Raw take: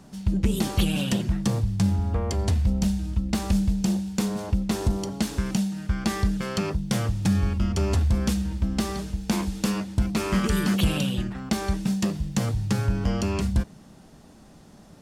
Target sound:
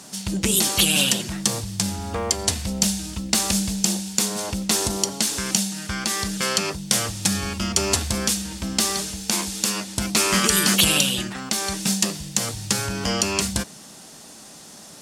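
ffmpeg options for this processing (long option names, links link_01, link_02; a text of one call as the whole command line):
ffmpeg -i in.wav -af "highpass=frequency=380:poles=1,equalizer=frequency=8500:width_type=o:width=2.6:gain=14,alimiter=limit=-9.5dB:level=0:latency=1:release=408,volume=6.5dB" out.wav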